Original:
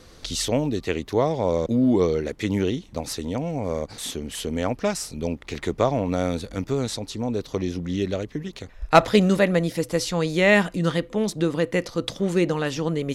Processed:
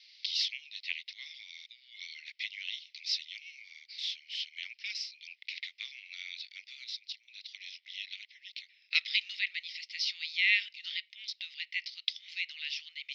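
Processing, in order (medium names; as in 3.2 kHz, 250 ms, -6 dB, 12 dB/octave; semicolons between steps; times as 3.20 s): 2.72–3.62 s: tilt EQ +2 dB/octave; 6.84–7.28 s: level held to a coarse grid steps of 12 dB; Chebyshev band-pass 2.1–5.3 kHz, order 4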